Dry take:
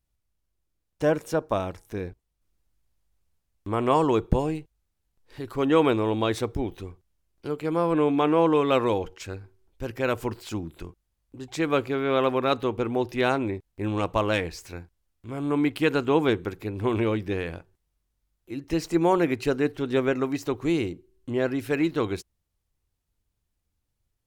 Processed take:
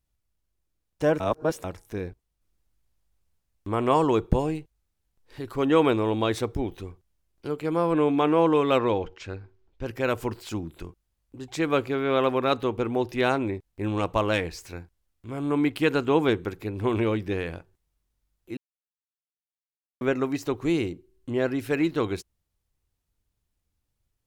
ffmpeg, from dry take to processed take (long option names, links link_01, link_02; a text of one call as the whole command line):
ffmpeg -i in.wav -filter_complex "[0:a]asettb=1/sr,asplit=3[link_01][link_02][link_03];[link_01]atrim=end=8.784[link_04];[link_02]atrim=start=8.78:end=9.86,asetpts=PTS-STARTPTS,afade=type=in:duration=0.004:curve=qsin,afade=type=out:start_time=1.076:duration=0.004:curve=qsin,lowpass=4500[link_05];[link_03]atrim=start=9.856[link_06];[link_04][link_05]acrossfade=duration=0.004:curve1=hsin:curve2=qsin[link_07];[link_07][link_06]acrossfade=duration=0.004:curve1=qsin:curve2=hsin,asplit=5[link_08][link_09][link_10][link_11][link_12];[link_08]atrim=end=1.202[link_13];[link_09]atrim=start=1.198:end=1.642,asetpts=PTS-STARTPTS,areverse[link_14];[link_10]atrim=start=1.638:end=18.57,asetpts=PTS-STARTPTS,afade=type=out:start_time=16.928:duration=0.004:curve=hsin[link_15];[link_11]atrim=start=18.57:end=20.01,asetpts=PTS-STARTPTS,volume=0[link_16];[link_12]atrim=start=20.01,asetpts=PTS-STARTPTS,afade=type=in:duration=0.004:curve=hsin[link_17];[link_13][link_14]acrossfade=duration=0.004:curve1=hsin:curve2=hsin[link_18];[link_15][link_16][link_17]concat=n=3:v=0:a=1[link_19];[link_18][link_19]acrossfade=duration=0.004:curve1=hsin:curve2=hsin" out.wav